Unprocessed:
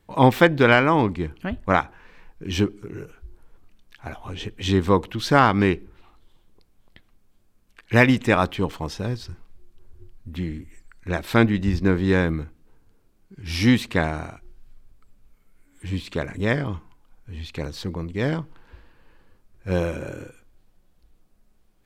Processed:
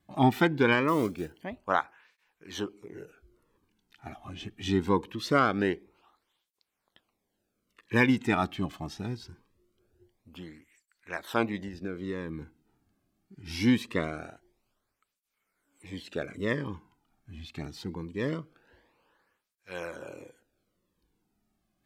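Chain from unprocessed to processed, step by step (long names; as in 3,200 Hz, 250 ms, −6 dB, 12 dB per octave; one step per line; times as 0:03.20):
0:00.88–0:01.42: one scale factor per block 5 bits
0:11.58–0:12.42: downward compressor 10 to 1, threshold −24 dBFS, peak gain reduction 10.5 dB
through-zero flanger with one copy inverted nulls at 0.23 Hz, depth 2.2 ms
level −5 dB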